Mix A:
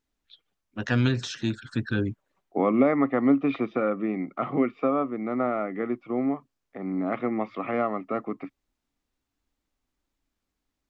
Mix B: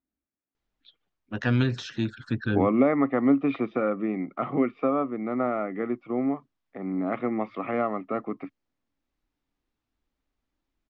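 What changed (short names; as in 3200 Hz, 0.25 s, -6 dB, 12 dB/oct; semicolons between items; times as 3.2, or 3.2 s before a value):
first voice: entry +0.55 s; master: add air absorption 110 m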